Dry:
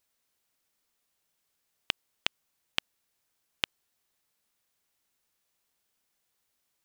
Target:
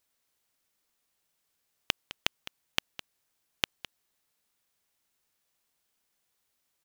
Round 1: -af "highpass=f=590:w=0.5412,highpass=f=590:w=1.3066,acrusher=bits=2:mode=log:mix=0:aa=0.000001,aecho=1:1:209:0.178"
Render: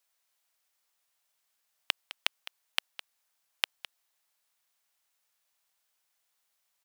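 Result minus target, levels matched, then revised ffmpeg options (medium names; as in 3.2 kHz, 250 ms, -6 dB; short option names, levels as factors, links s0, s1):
500 Hz band -6.0 dB
-af "acrusher=bits=2:mode=log:mix=0:aa=0.000001,aecho=1:1:209:0.178"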